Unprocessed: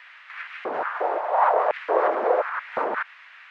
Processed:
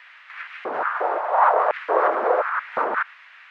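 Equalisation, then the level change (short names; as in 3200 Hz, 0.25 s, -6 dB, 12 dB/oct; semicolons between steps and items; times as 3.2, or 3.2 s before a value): dynamic EQ 1300 Hz, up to +6 dB, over -36 dBFS, Q 1.7; 0.0 dB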